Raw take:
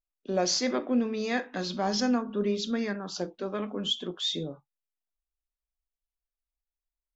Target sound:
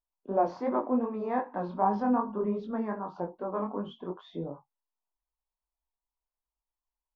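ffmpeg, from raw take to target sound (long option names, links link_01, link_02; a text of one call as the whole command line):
ffmpeg -i in.wav -af "lowpass=frequency=960:width_type=q:width=5,flanger=delay=19:depth=4.8:speed=2.6" out.wav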